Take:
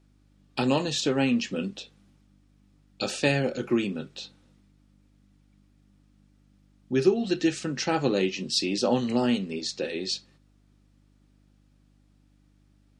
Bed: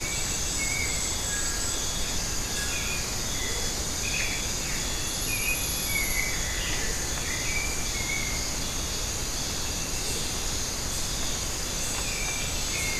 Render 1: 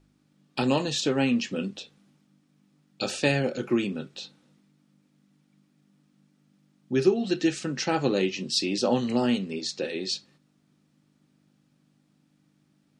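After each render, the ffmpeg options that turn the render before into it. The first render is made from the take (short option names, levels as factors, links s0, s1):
-af "bandreject=f=50:t=h:w=4,bandreject=f=100:t=h:w=4"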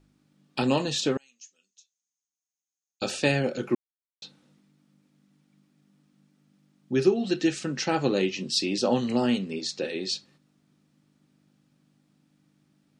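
-filter_complex "[0:a]asettb=1/sr,asplit=3[s0][s1][s2];[s0]atrim=end=1.174[s3];[s1]atrim=start=1.17:end=3.02,asetpts=PTS-STARTPTS,afade=t=in:d=0.004:c=qsin,afade=t=out:st=1.846:d=0.004:c=qsin,bandpass=f=6500:t=q:w=12[s4];[s2]atrim=start=3.016[s5];[s3][s4]acrossfade=d=0.004:c1=hsin:c2=qsin[s6];[s6][s5]acrossfade=d=0.004:c1=qsin:c2=hsin,asplit=3[s7][s8][s9];[s7]atrim=end=3.75,asetpts=PTS-STARTPTS,afade=t=out:st=3.746:d=0.004:c=hsin[s10];[s8]atrim=start=3.75:end=4.22,asetpts=PTS-STARTPTS,volume=0[s11];[s9]atrim=start=4.22,asetpts=PTS-STARTPTS,afade=t=in:d=0.004:c=hsin[s12];[s10][s11][s12]concat=n=3:v=0:a=1"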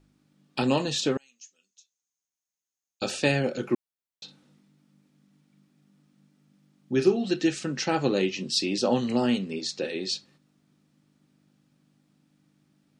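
-filter_complex "[0:a]asettb=1/sr,asplit=3[s0][s1][s2];[s0]atrim=end=4.244[s3];[s1]atrim=start=4.24:end=7.17,asetpts=PTS-STARTPTS,afade=t=in:d=0.004:c=qsin,afade=t=out:st=2.926:d=0.004:c=qsin,asplit=2[s4][s5];[s5]adelay=41,volume=0.316[s6];[s4][s6]amix=inputs=2:normalize=0,atrim=end_sample=129213[s7];[s2]atrim=start=7.166[s8];[s3][s7]acrossfade=d=0.004:c1=hsin:c2=qsin[s9];[s9][s8]acrossfade=d=0.004:c1=qsin:c2=hsin"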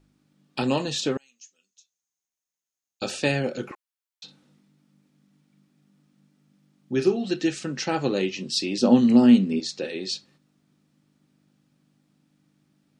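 -filter_complex "[0:a]asettb=1/sr,asplit=3[s0][s1][s2];[s0]atrim=end=3.714[s3];[s1]atrim=start=3.71:end=4.24,asetpts=PTS-STARTPTS,afade=t=in:d=0.004:c=qsin,afade=t=out:st=0.526:d=0.004:c=qsin,highpass=f=830:w=0.5412,highpass=f=830:w=1.3066[s4];[s2]atrim=start=4.236[s5];[s3][s4]acrossfade=d=0.004:c1=hsin:c2=qsin[s6];[s6][s5]acrossfade=d=0.004:c1=qsin:c2=hsin,asettb=1/sr,asplit=3[s7][s8][s9];[s7]atrim=end=8.814[s10];[s8]atrim=start=8.81:end=9.6,asetpts=PTS-STARTPTS,afade=t=in:d=0.004:c=qsin,afade=t=out:st=0.786:d=0.004:c=qsin,equalizer=f=230:t=o:w=0.96:g=11.5[s11];[s9]atrim=start=9.596[s12];[s10][s11]acrossfade=d=0.004:c1=hsin:c2=qsin[s13];[s13][s12]acrossfade=d=0.004:c1=qsin:c2=hsin"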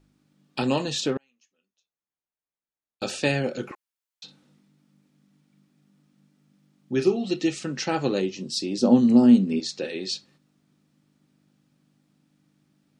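-filter_complex "[0:a]asettb=1/sr,asplit=3[s0][s1][s2];[s0]atrim=end=1.064[s3];[s1]atrim=start=1.06:end=3.03,asetpts=PTS-STARTPTS,afade=t=in:d=0.004:c=qsin,afade=t=out:st=1.966:d=0.004:c=qsin,adynamicsmooth=sensitivity=4.5:basefreq=2100[s4];[s2]atrim=start=3.026[s5];[s3][s4]acrossfade=d=0.004:c1=hsin:c2=qsin[s6];[s6][s5]acrossfade=d=0.004:c1=qsin:c2=hsin,asettb=1/sr,asplit=3[s7][s8][s9];[s7]atrim=end=7.044[s10];[s8]atrim=start=7.04:end=7.6,asetpts=PTS-STARTPTS,afade=t=in:d=0.004:c=qsin,afade=t=out:st=0.556:d=0.004:c=qsin,asuperstop=centerf=1600:order=4:qfactor=4.1[s11];[s9]atrim=start=7.596[s12];[s10][s11]acrossfade=d=0.004:c1=hsin:c2=qsin[s13];[s13][s12]acrossfade=d=0.004:c1=qsin:c2=hsin,asettb=1/sr,asplit=3[s14][s15][s16];[s14]atrim=end=8.204[s17];[s15]atrim=start=8.2:end=9.48,asetpts=PTS-STARTPTS,afade=t=in:d=0.004:c=qsin,afade=t=out:st=1.276:d=0.004:c=qsin,equalizer=f=2300:t=o:w=1.5:g=-9.5[s18];[s16]atrim=start=9.476[s19];[s17][s18]acrossfade=d=0.004:c1=hsin:c2=qsin[s20];[s20][s19]acrossfade=d=0.004:c1=qsin:c2=hsin"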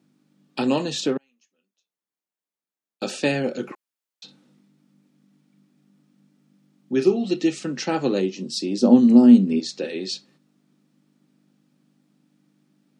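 -af "highpass=f=160:w=0.5412,highpass=f=160:w=1.3066,equalizer=f=220:w=0.49:g=4"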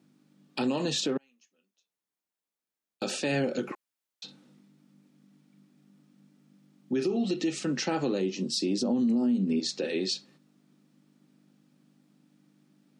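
-af "acompressor=threshold=0.141:ratio=6,alimiter=limit=0.1:level=0:latency=1:release=76"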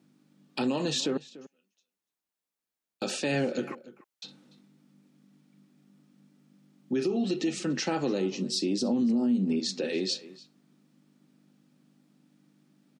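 -filter_complex "[0:a]asplit=2[s0][s1];[s1]adelay=291.5,volume=0.126,highshelf=f=4000:g=-6.56[s2];[s0][s2]amix=inputs=2:normalize=0"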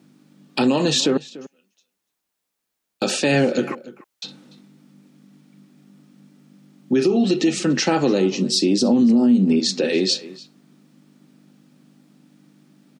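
-af "volume=3.35"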